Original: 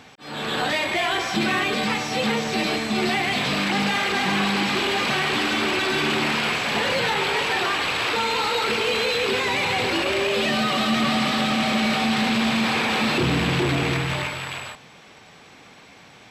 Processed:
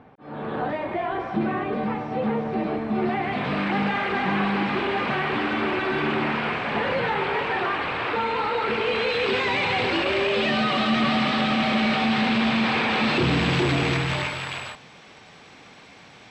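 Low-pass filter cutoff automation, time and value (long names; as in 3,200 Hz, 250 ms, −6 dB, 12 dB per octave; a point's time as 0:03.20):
0:02.83 1,000 Hz
0:03.60 1,900 Hz
0:08.59 1,900 Hz
0:09.34 3,700 Hz
0:12.93 3,700 Hz
0:13.59 7,200 Hz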